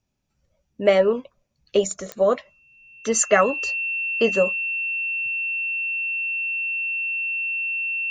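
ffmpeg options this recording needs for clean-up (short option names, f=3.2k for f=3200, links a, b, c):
-af "adeclick=t=4,bandreject=f=2.7k:w=30"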